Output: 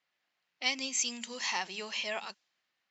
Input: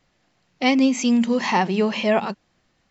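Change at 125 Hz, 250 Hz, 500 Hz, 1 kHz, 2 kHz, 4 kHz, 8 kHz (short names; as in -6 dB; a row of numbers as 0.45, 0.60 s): under -25 dB, -27.5 dB, -21.0 dB, -16.5 dB, -9.0 dB, -4.5 dB, n/a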